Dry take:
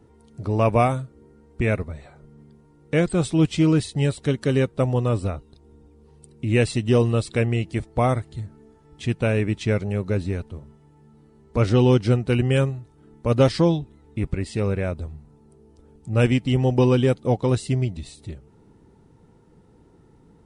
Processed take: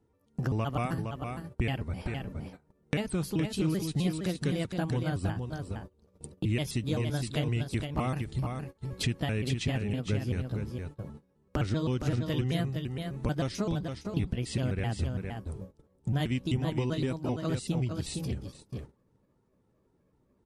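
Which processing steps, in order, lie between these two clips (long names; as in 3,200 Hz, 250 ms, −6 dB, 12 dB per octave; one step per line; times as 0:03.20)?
pitch shifter gated in a rhythm +4 semitones, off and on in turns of 129 ms
downward compressor 4 to 1, threshold −35 dBFS, peak gain reduction 19 dB
single-tap delay 463 ms −6 dB
dynamic equaliser 580 Hz, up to −7 dB, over −49 dBFS, Q 1.1
noise gate −47 dBFS, range −23 dB
level +6.5 dB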